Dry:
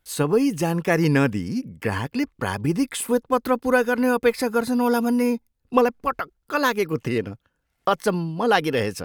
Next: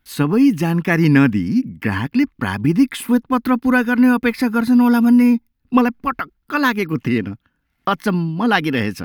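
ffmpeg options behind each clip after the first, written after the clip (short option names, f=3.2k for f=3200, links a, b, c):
-af "equalizer=f=250:t=o:w=1:g=8,equalizer=f=500:t=o:w=1:g=-10,equalizer=f=2k:t=o:w=1:g=3,equalizer=f=8k:t=o:w=1:g=-10,volume=4dB"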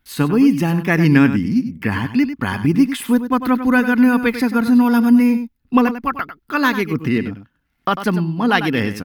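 -af "aecho=1:1:97:0.282"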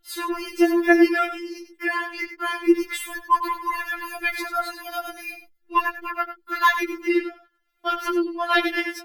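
-af "afftfilt=real='re*4*eq(mod(b,16),0)':imag='im*4*eq(mod(b,16),0)':win_size=2048:overlap=0.75"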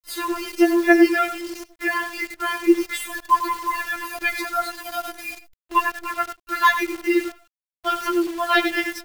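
-af "acrusher=bits=7:dc=4:mix=0:aa=0.000001,volume=1.5dB"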